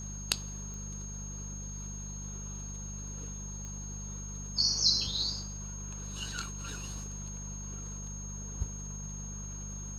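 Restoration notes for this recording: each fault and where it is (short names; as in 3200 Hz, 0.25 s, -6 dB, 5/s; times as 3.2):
hum 50 Hz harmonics 4 -42 dBFS
tone 6500 Hz -43 dBFS
0.74 pop -33 dBFS
3.65 pop -31 dBFS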